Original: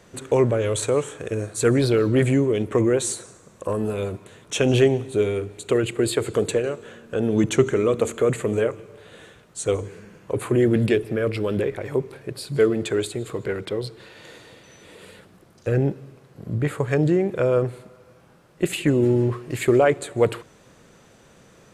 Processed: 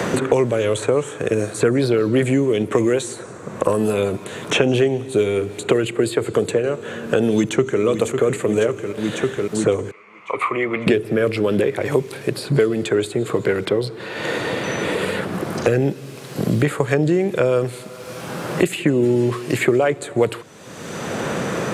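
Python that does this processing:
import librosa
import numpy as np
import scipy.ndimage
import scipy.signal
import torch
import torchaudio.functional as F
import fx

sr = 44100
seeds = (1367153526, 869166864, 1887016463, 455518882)

y = fx.echo_throw(x, sr, start_s=7.32, length_s=0.5, ms=550, feedback_pct=70, wet_db=-11.0)
y = fx.double_bandpass(y, sr, hz=1600.0, octaves=0.88, at=(9.91, 10.87))
y = scipy.signal.sosfilt(scipy.signal.butter(2, 120.0, 'highpass', fs=sr, output='sos'), y)
y = fx.band_squash(y, sr, depth_pct=100)
y = F.gain(torch.from_numpy(y), 3.0).numpy()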